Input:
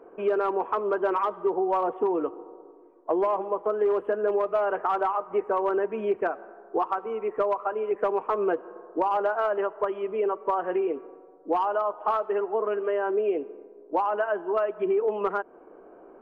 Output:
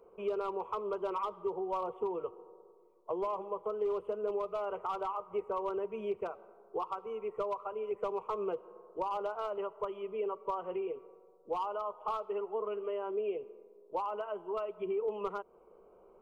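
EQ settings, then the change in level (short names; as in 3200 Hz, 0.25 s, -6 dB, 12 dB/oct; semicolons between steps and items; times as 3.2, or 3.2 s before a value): bell 710 Hz -14.5 dB 0.83 oct; fixed phaser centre 700 Hz, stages 4; 0.0 dB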